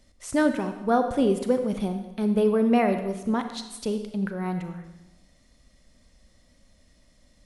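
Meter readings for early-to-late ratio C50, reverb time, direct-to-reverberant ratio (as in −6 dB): 8.5 dB, 1.0 s, 7.0 dB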